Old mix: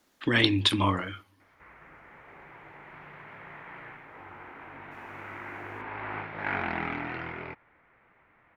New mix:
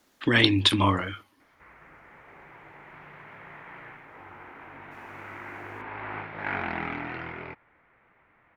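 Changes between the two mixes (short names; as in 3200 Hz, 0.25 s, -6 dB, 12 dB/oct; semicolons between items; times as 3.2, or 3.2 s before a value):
speech +3.5 dB; reverb: off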